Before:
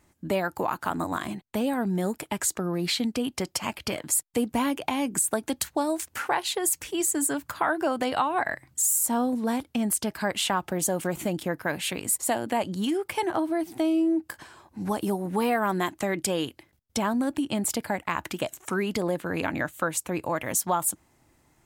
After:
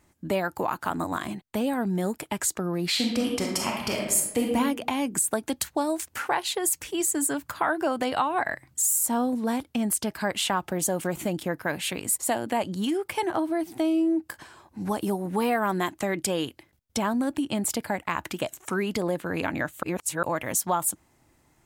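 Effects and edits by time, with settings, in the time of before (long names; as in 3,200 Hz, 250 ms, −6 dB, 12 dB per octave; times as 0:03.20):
0:02.88–0:04.47: thrown reverb, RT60 0.96 s, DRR −0.5 dB
0:19.83–0:20.23: reverse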